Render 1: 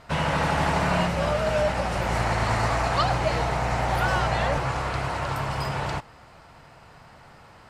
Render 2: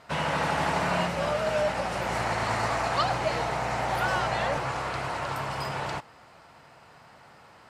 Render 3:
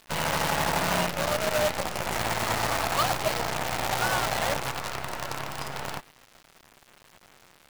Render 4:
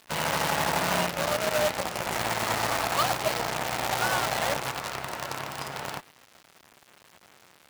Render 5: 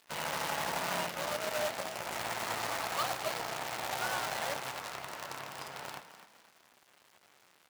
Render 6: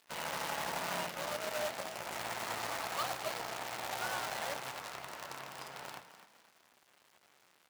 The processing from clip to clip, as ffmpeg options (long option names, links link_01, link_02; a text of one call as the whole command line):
ffmpeg -i in.wav -af "highpass=frequency=200:poles=1,volume=-2dB" out.wav
ffmpeg -i in.wav -af "acrusher=bits=5:dc=4:mix=0:aa=0.000001" out.wav
ffmpeg -i in.wav -af "highpass=frequency=110:poles=1" out.wav
ffmpeg -i in.wav -filter_complex "[0:a]lowshelf=frequency=250:gain=-7,flanger=delay=6.8:depth=9.5:regen=-75:speed=1.1:shape=sinusoidal,asplit=2[link_01][link_02];[link_02]asplit=4[link_03][link_04][link_05][link_06];[link_03]adelay=255,afreqshift=36,volume=-12dB[link_07];[link_04]adelay=510,afreqshift=72,volume=-20.9dB[link_08];[link_05]adelay=765,afreqshift=108,volume=-29.7dB[link_09];[link_06]adelay=1020,afreqshift=144,volume=-38.6dB[link_10];[link_07][link_08][link_09][link_10]amix=inputs=4:normalize=0[link_11];[link_01][link_11]amix=inputs=2:normalize=0,volume=-3.5dB" out.wav
ffmpeg -i in.wav -af "bandreject=frequency=50:width_type=h:width=6,bandreject=frequency=100:width_type=h:width=6,bandreject=frequency=150:width_type=h:width=6,volume=-3dB" out.wav